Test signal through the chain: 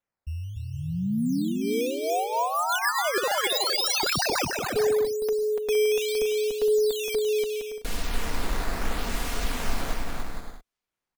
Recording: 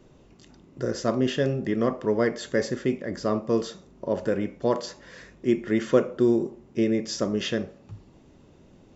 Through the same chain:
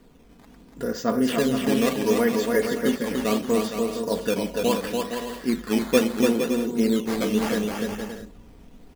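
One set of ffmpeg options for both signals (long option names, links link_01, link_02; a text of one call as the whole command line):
ffmpeg -i in.wav -filter_complex "[0:a]equalizer=frequency=530:width=4.9:gain=-3,aecho=1:1:4.2:0.65,asubboost=boost=3:cutoff=55,acrusher=samples=9:mix=1:aa=0.000001:lfo=1:lforange=14.4:lforate=0.73,asplit=2[link_01][link_02];[link_02]aecho=0:1:290|464|568.4|631|668.6:0.631|0.398|0.251|0.158|0.1[link_03];[link_01][link_03]amix=inputs=2:normalize=0" out.wav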